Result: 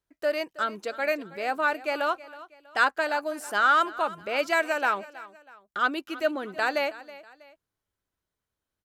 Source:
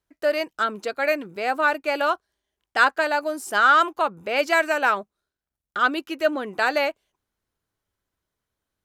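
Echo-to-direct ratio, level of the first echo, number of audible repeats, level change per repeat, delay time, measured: -17.5 dB, -18.0 dB, 2, -8.0 dB, 0.322 s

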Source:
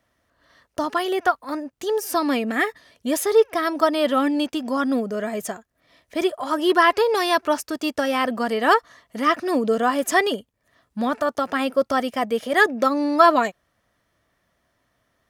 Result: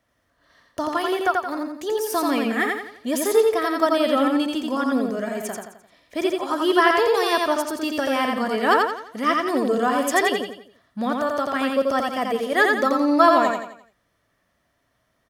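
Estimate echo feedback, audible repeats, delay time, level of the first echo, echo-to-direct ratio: 41%, 5, 86 ms, -3.0 dB, -2.0 dB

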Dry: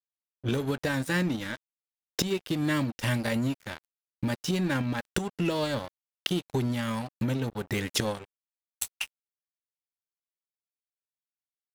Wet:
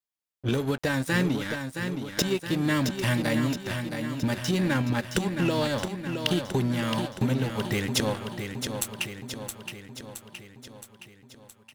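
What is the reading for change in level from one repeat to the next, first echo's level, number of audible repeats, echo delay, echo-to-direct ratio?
-4.5 dB, -7.0 dB, 6, 0.669 s, -5.0 dB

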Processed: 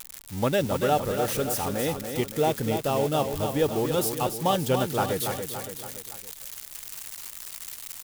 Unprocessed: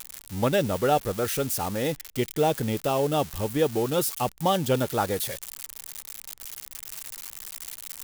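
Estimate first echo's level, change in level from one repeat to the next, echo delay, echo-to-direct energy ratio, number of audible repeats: -7.0 dB, -5.5 dB, 0.283 s, -5.5 dB, 4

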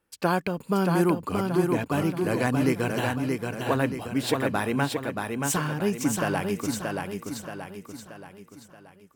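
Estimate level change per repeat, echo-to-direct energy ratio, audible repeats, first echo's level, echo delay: -6.5 dB, -3.0 dB, 5, -4.0 dB, 0.628 s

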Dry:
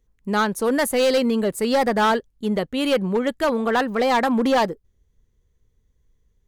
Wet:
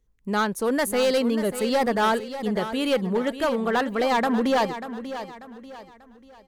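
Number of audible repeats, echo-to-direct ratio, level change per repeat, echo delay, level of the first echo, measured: 3, -11.0 dB, -8.5 dB, 0.59 s, -11.5 dB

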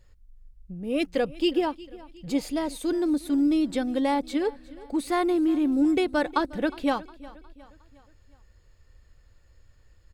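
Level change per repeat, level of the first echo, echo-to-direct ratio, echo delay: -6.5 dB, -20.0 dB, -19.0 dB, 0.36 s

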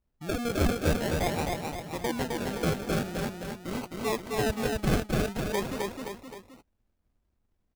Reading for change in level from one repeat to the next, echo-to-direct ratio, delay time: -6.0 dB, -2.0 dB, 0.261 s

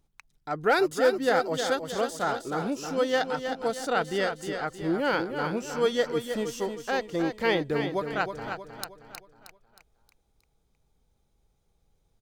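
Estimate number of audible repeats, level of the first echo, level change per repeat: 4, -7.5 dB, -7.0 dB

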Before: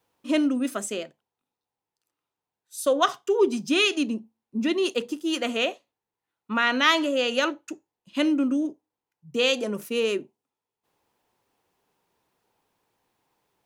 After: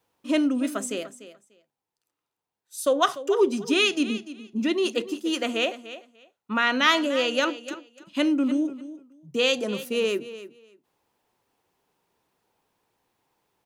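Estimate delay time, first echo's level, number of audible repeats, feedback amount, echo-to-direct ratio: 0.295 s, -14.5 dB, 2, 17%, -14.5 dB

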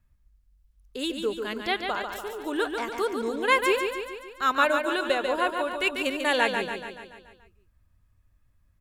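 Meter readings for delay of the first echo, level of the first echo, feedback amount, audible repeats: 0.143 s, -6.0 dB, 56%, 6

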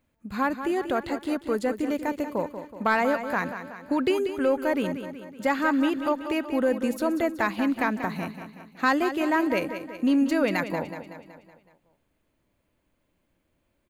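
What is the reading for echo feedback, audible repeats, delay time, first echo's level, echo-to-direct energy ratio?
53%, 5, 0.187 s, -10.0 dB, -8.5 dB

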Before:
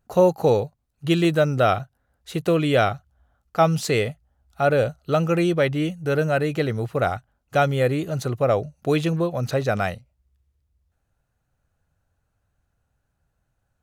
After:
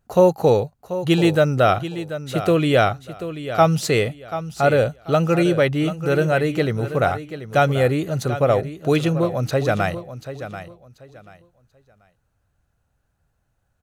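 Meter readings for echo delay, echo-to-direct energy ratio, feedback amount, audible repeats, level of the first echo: 0.736 s, -11.5 dB, 24%, 2, -12.0 dB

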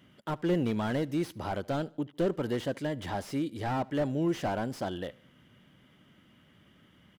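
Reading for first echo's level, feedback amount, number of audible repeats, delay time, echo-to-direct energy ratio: -24.0 dB, 42%, 2, 75 ms, -23.0 dB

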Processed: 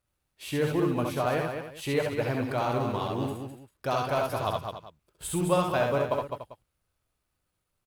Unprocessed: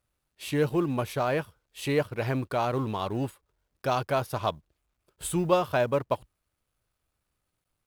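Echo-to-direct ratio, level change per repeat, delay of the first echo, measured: -0.5 dB, no steady repeat, 66 ms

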